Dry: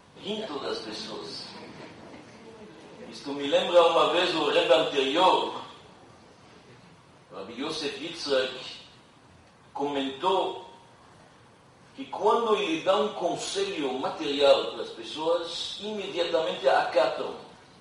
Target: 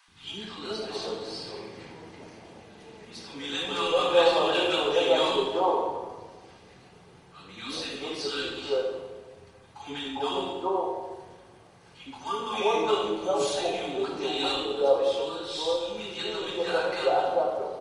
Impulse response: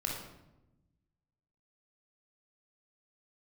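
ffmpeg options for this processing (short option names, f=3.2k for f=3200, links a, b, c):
-filter_complex "[0:a]acrossover=split=310|1100[a][b][c];[a]adelay=80[d];[b]adelay=400[e];[d][e][c]amix=inputs=3:normalize=0,asplit=2[f][g];[1:a]atrim=start_sample=2205,asetrate=26460,aresample=44100[h];[g][h]afir=irnorm=-1:irlink=0,volume=-7dB[i];[f][i]amix=inputs=2:normalize=0,volume=-4dB"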